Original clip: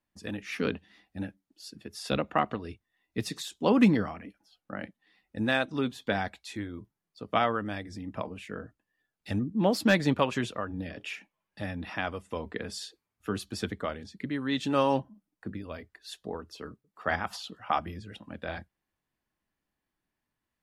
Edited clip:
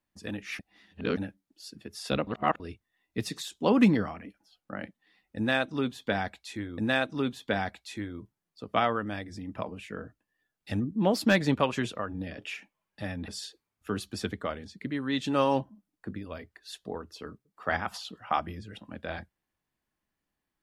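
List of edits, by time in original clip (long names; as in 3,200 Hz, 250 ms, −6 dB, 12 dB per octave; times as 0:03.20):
0:00.59–0:01.17: reverse
0:02.27–0:02.60: reverse
0:05.37–0:06.78: repeat, 2 plays
0:11.87–0:12.67: remove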